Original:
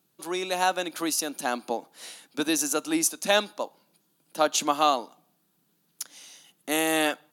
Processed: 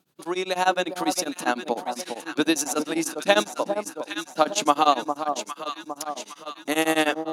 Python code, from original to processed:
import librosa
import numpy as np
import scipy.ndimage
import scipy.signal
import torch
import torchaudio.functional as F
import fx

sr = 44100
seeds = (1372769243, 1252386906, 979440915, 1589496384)

y = fx.high_shelf(x, sr, hz=7600.0, db=-10.0)
y = fx.echo_alternate(y, sr, ms=406, hz=1100.0, feedback_pct=72, wet_db=-6.5)
y = y * np.abs(np.cos(np.pi * 10.0 * np.arange(len(y)) / sr))
y = F.gain(torch.from_numpy(y), 6.0).numpy()